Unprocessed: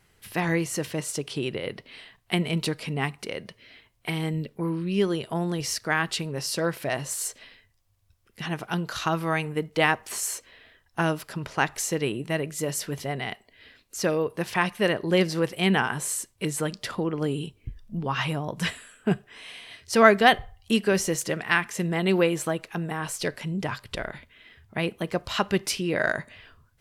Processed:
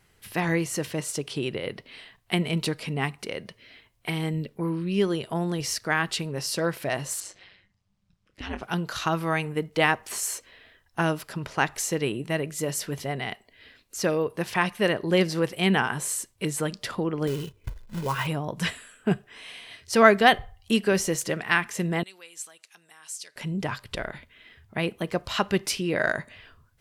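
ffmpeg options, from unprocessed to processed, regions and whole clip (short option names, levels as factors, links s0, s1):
-filter_complex "[0:a]asettb=1/sr,asplit=3[s0][s1][s2];[s0]atrim=end=7.204[s3];[s1]atrim=start=7.2:end=8.63,asetpts=PTS-STARTPTS,afade=t=in:d=0.004:c=qsin,afade=t=out:st=1.426:d=0.004:c=qsin,lowpass=5800,asplit=2[s4][s5];[s5]adelay=27,volume=0.282[s6];[s4][s6]amix=inputs=2:normalize=0,atrim=end_sample=63063,aeval=exprs='val(0)*sin(2*PI*97*n/s)':c=same[s7];[s2]atrim=start=8.626[s8];[s3][s7]acrossfade=d=0.004:c1=hsin:c2=qsin[s9];[s9][s8]acrossfade=d=0.004:c1=qsin:c2=hsin,asettb=1/sr,asplit=3[s10][s11][s12];[s10]atrim=end=17.274[s13];[s11]atrim=start=17.27:end=18.27,asetpts=PTS-STARTPTS,afade=t=in:d=0.004:c=qsin,afade=t=out:st=0.996:d=0.004:c=qsin,lowpass=f=2100:p=1,acrusher=bits=3:mode=log:mix=0:aa=0.000001,aecho=1:1:2:0.46,atrim=end_sample=44100[s14];[s12]atrim=start=18.266[s15];[s13][s14]acrossfade=d=0.004:c1=hsin:c2=qsin[s16];[s16][s15]acrossfade=d=0.004:c1=qsin:c2=hsin,asettb=1/sr,asplit=3[s17][s18][s19];[s17]atrim=end=22.034[s20];[s18]atrim=start=22.03:end=23.36,asetpts=PTS-STARTPTS,afade=t=in:d=0.004:c=qsin,afade=t=out:st=1.326:d=0.004:c=qsin,acompressor=threshold=0.0282:ratio=1.5:attack=3.2:release=140:knee=1:detection=peak,bandpass=f=7400:t=q:w=1.2[s21];[s19]atrim=start=23.356[s22];[s20][s21]acrossfade=d=0.004:c1=hsin:c2=qsin[s23];[s23][s22]acrossfade=d=0.004:c1=qsin:c2=hsin"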